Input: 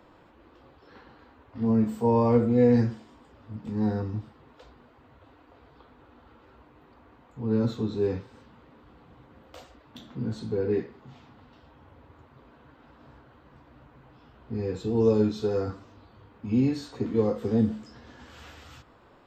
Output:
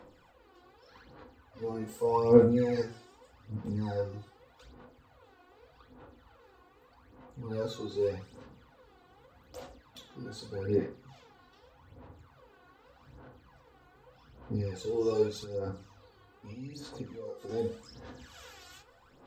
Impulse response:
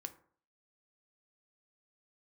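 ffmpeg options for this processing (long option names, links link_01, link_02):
-filter_complex "[0:a]bass=frequency=250:gain=-3,treble=frequency=4000:gain=9,asettb=1/sr,asplit=3[link_01][link_02][link_03];[link_01]atrim=end=15.434[link_04];[link_02]atrim=start=15.43:end=17.49,asetpts=PTS-STARTPTS,afade=type=in:duration=0.004:curve=qsin,afade=type=out:start_time=2.056:duration=0.004:curve=qsin,acompressor=threshold=-33dB:ratio=16[link_05];[link_03]atrim=start=17.486[link_06];[link_04][link_05]acrossfade=duration=0.004:curve1=hsin:curve2=qsin[link_07];[link_07][link_06]acrossfade=duration=0.004:curve1=qsin:curve2=hsin,aphaser=in_gain=1:out_gain=1:delay=2.8:decay=0.72:speed=0.83:type=sinusoidal[link_08];[1:a]atrim=start_sample=2205,asetrate=66150,aresample=44100[link_09];[link_08][link_09]afir=irnorm=-1:irlink=0"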